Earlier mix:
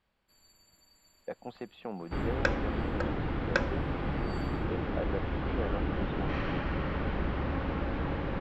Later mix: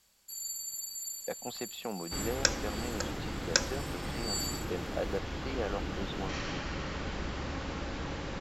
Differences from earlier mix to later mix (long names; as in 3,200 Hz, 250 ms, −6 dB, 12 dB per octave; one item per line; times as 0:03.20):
second sound −6.0 dB
master: remove high-frequency loss of the air 480 metres